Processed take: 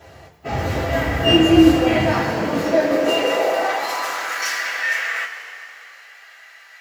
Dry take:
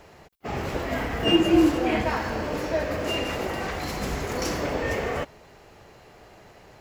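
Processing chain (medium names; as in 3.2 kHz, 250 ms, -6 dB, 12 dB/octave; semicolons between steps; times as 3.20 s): high-pass sweep 80 Hz -> 1.7 kHz, 1.72–4.46 s; two-slope reverb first 0.21 s, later 2.9 s, from -18 dB, DRR -8.5 dB; trim -2.5 dB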